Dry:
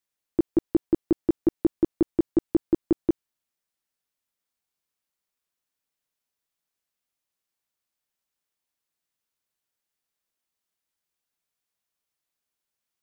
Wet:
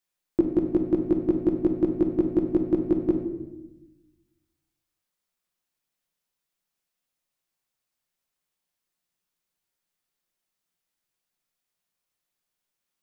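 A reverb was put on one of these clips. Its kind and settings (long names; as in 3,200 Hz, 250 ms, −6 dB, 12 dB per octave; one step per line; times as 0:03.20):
rectangular room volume 470 cubic metres, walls mixed, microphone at 0.94 metres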